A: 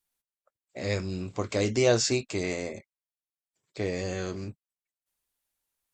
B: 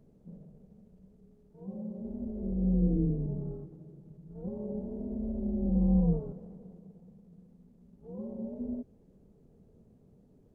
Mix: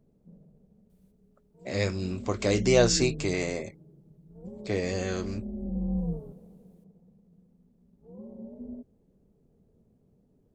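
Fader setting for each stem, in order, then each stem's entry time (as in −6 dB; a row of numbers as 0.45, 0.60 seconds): +1.5, −4.5 decibels; 0.90, 0.00 seconds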